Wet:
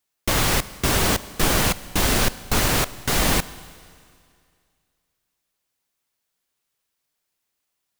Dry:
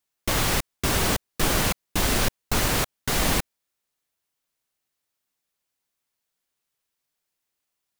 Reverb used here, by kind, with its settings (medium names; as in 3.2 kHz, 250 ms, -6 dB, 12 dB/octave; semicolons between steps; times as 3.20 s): Schroeder reverb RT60 2.2 s, combs from 31 ms, DRR 16.5 dB; trim +3 dB